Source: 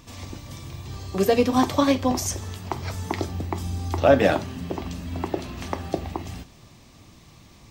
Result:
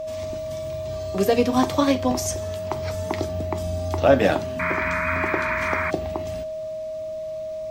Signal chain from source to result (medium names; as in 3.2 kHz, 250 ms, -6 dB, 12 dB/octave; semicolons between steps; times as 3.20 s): wow and flutter 16 cents; painted sound noise, 4.59–5.91 s, 890–2500 Hz -26 dBFS; whistle 630 Hz -28 dBFS